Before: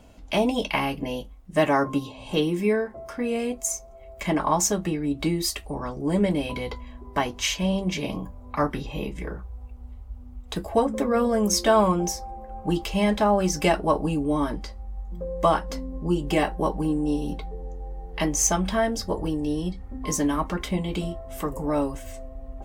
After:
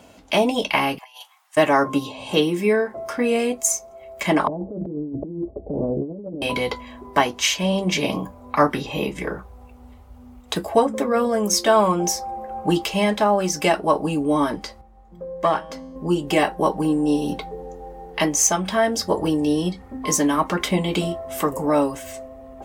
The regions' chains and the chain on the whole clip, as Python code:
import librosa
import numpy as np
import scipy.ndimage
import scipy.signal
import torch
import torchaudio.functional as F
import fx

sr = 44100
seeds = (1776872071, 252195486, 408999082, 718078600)

y = fx.chain(x, sr, fx.steep_highpass(hz=800.0, slope=48),
    fx.over_compress(threshold_db=-47.0, ratio=-0.5), at=(0.98, 1.57))
y = fx.chain(y, sr, fx.steep_lowpass(hz=590.0, slope=36),
    fx.over_compress(threshold_db=-34.0, ratio=-1.0), at=(4.47, 6.42))
y = fx.chain(y, sr, fx.self_delay(depth_ms=0.052),
    fx.high_shelf(hz=5600.0, db=-7.5),
    fx.comb_fb(f0_hz=160.0, decay_s=0.97, harmonics='all', damping=0.0, mix_pct=50), at=(14.81, 15.96))
y = scipy.signal.sosfilt(scipy.signal.butter(2, 88.0, 'highpass', fs=sr, output='sos'), y)
y = fx.low_shelf(y, sr, hz=210.0, db=-8.5)
y = fx.rider(y, sr, range_db=3, speed_s=0.5)
y = y * librosa.db_to_amplitude(6.5)